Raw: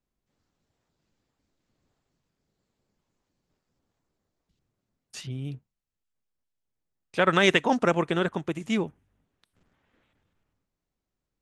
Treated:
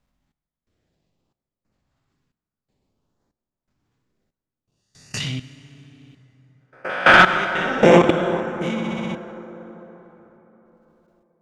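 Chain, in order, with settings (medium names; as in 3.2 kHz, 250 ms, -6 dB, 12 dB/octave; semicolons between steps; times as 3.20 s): reverse spectral sustain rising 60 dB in 0.60 s; 5.20–7.24 s: overdrive pedal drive 20 dB, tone 3.2 kHz, clips at -6.5 dBFS; LFO notch saw up 0.58 Hz 340–3700 Hz; gate -44 dBFS, range -7 dB; treble shelf 6 kHz -10.5 dB; flutter echo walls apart 10.7 m, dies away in 1 s; tremolo 1 Hz, depth 99%; level held to a coarse grid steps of 23 dB; plate-style reverb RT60 4.3 s, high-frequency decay 0.5×, DRR 13.5 dB; loudness maximiser +20.5 dB; trim -1 dB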